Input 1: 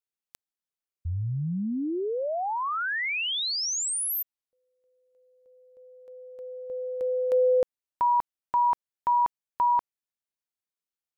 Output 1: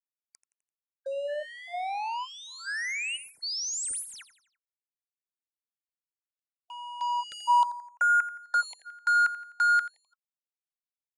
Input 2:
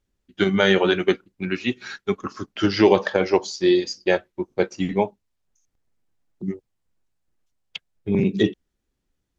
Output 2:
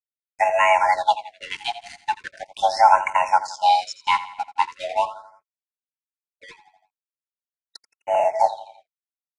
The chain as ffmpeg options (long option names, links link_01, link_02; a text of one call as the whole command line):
ffmpeg -i in.wav -filter_complex "[0:a]afreqshift=460,highpass=49,asplit=2[link_01][link_02];[link_02]aeval=exprs='sgn(val(0))*max(abs(val(0))-0.0251,0)':channel_layout=same,volume=-9dB[link_03];[link_01][link_03]amix=inputs=2:normalize=0,lowshelf=frequency=150:gain=3.5,aeval=exprs='sgn(val(0))*max(abs(val(0))-0.0168,0)':channel_layout=same,asuperstop=centerf=1200:order=12:qfactor=5.8,asplit=2[link_04][link_05];[link_05]aecho=0:1:85|170|255|340:0.178|0.0836|0.0393|0.0185[link_06];[link_04][link_06]amix=inputs=2:normalize=0,aresample=22050,aresample=44100,afftfilt=real='re*(1-between(b*sr/1024,460*pow(4200/460,0.5+0.5*sin(2*PI*0.4*pts/sr))/1.41,460*pow(4200/460,0.5+0.5*sin(2*PI*0.4*pts/sr))*1.41))':imag='im*(1-between(b*sr/1024,460*pow(4200/460,0.5+0.5*sin(2*PI*0.4*pts/sr))/1.41,460*pow(4200/460,0.5+0.5*sin(2*PI*0.4*pts/sr))*1.41))':win_size=1024:overlap=0.75,volume=-1dB" out.wav